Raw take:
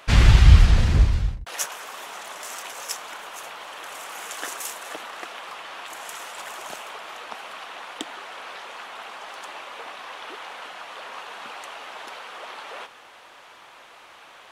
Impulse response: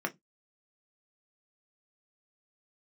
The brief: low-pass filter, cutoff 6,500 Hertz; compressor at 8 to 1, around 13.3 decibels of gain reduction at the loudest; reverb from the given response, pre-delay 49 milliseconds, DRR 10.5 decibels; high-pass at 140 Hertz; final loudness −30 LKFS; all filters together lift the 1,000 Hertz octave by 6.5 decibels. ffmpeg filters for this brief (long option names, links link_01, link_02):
-filter_complex "[0:a]highpass=140,lowpass=6500,equalizer=frequency=1000:width_type=o:gain=8,acompressor=threshold=-30dB:ratio=8,asplit=2[link_01][link_02];[1:a]atrim=start_sample=2205,adelay=49[link_03];[link_02][link_03]afir=irnorm=-1:irlink=0,volume=-16dB[link_04];[link_01][link_04]amix=inputs=2:normalize=0,volume=4.5dB"